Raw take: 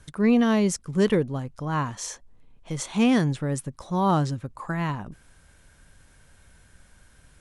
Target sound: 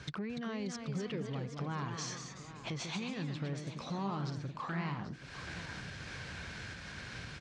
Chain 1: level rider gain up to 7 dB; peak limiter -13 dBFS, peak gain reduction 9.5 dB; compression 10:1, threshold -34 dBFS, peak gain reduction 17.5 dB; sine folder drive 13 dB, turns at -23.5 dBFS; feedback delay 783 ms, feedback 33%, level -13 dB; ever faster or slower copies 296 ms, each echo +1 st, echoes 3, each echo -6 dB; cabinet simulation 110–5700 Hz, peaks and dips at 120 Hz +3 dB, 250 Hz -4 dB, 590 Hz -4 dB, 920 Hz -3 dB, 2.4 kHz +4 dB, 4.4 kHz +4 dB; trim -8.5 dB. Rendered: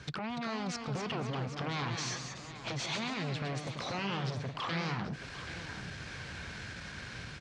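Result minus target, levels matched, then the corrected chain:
compression: peak gain reduction -8.5 dB
level rider gain up to 7 dB; peak limiter -13 dBFS, peak gain reduction 9.5 dB; compression 10:1, threshold -43.5 dBFS, peak gain reduction 26 dB; sine folder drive 13 dB, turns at -23.5 dBFS; feedback delay 783 ms, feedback 33%, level -13 dB; ever faster or slower copies 296 ms, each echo +1 st, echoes 3, each echo -6 dB; cabinet simulation 110–5700 Hz, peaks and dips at 120 Hz +3 dB, 250 Hz -4 dB, 590 Hz -4 dB, 920 Hz -3 dB, 2.4 kHz +4 dB, 4.4 kHz +4 dB; trim -8.5 dB

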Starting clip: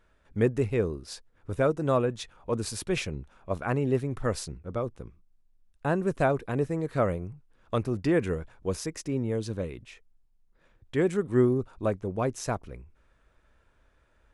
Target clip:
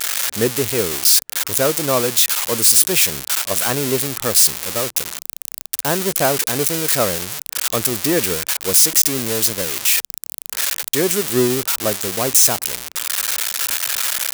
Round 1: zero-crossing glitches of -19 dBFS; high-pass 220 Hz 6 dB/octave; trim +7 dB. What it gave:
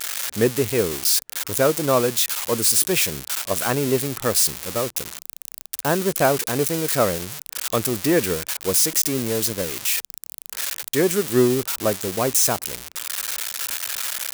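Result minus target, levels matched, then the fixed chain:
zero-crossing glitches: distortion -6 dB
zero-crossing glitches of -12.5 dBFS; high-pass 220 Hz 6 dB/octave; trim +7 dB

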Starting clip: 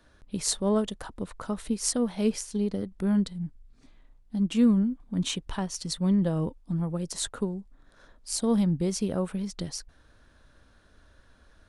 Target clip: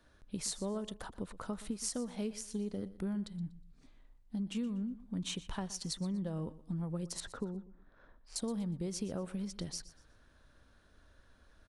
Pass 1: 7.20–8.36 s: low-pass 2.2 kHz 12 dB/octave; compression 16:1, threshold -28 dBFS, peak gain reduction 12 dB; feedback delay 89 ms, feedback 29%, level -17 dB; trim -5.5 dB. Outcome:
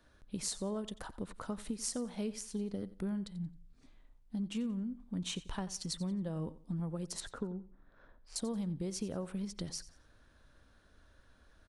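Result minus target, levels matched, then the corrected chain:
echo 32 ms early
7.20–8.36 s: low-pass 2.2 kHz 12 dB/octave; compression 16:1, threshold -28 dBFS, peak gain reduction 12 dB; feedback delay 121 ms, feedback 29%, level -17 dB; trim -5.5 dB

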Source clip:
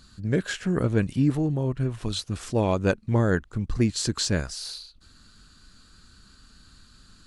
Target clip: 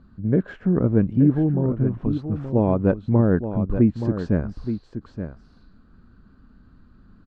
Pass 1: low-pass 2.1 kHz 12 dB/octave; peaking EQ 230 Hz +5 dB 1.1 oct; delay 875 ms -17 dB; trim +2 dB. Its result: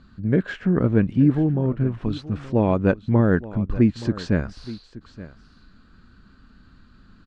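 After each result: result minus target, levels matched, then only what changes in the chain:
2 kHz band +7.0 dB; echo-to-direct -7.5 dB
change: low-pass 1 kHz 12 dB/octave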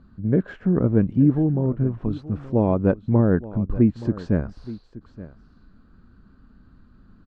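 echo-to-direct -7.5 dB
change: delay 875 ms -9.5 dB

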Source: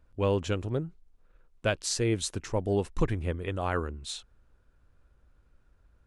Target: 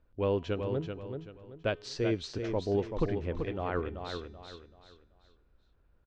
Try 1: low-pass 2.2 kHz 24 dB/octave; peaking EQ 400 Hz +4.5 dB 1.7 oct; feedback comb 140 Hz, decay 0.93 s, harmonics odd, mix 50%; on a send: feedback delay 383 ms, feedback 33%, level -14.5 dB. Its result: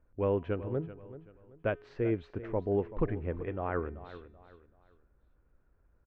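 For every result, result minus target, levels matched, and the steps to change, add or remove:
4 kHz band -16.5 dB; echo-to-direct -8 dB
change: low-pass 4.8 kHz 24 dB/octave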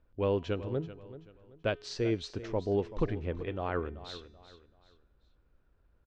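echo-to-direct -8 dB
change: feedback delay 383 ms, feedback 33%, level -6.5 dB

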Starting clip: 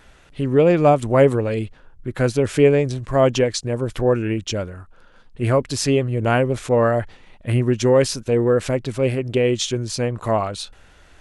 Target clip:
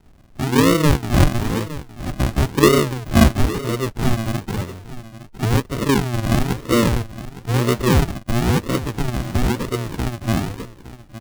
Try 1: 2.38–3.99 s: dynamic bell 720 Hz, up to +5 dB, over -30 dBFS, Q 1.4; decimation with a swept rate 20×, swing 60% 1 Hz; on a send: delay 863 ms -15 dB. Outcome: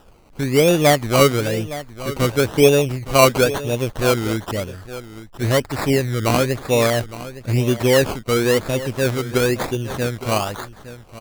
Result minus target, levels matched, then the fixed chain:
decimation with a swept rate: distortion -20 dB
2.38–3.99 s: dynamic bell 720 Hz, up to +5 dB, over -30 dBFS, Q 1.4; decimation with a swept rate 76×, swing 60% 1 Hz; on a send: delay 863 ms -15 dB

